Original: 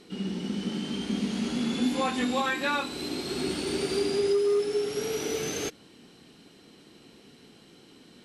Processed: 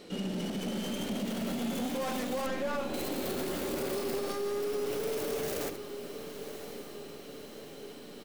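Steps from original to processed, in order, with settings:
stylus tracing distortion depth 0.49 ms
single-tap delay 75 ms −17.5 dB
soft clipping −26.5 dBFS, distortion −12 dB
parametric band 570 Hz +11 dB 0.37 octaves
mains-hum notches 50/100/150/200/250/300/350/400 Hz
0:02.46–0:02.94: head-to-tape spacing loss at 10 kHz 20 dB
brickwall limiter −29 dBFS, peak gain reduction 10.5 dB
feedback delay with all-pass diffusion 1,105 ms, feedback 56%, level −10 dB
level +2 dB

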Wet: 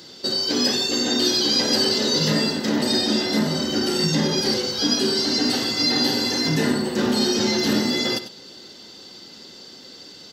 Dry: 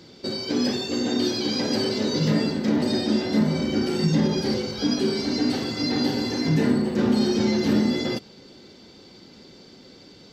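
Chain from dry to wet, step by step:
spectral tilt +2.5 dB per octave
notch filter 2,300 Hz, Q 9.3
single-tap delay 96 ms −12.5 dB
level +4 dB

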